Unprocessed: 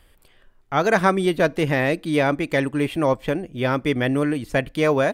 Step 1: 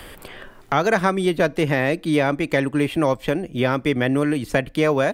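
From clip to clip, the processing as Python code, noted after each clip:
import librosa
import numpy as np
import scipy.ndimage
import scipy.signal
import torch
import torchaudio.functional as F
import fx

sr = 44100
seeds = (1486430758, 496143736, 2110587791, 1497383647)

y = fx.band_squash(x, sr, depth_pct=70)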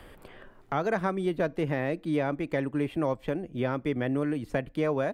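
y = fx.high_shelf(x, sr, hz=2200.0, db=-10.5)
y = F.gain(torch.from_numpy(y), -8.0).numpy()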